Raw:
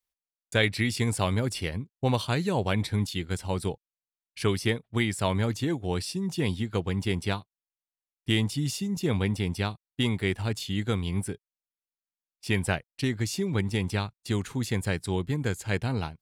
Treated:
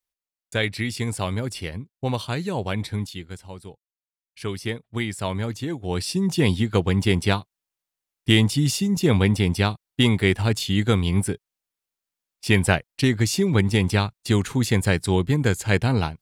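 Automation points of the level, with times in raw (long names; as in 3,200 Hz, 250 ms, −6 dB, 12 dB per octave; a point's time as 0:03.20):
0:02.96 0 dB
0:03.63 −11 dB
0:04.85 −0.5 dB
0:05.76 −0.5 dB
0:06.17 +8 dB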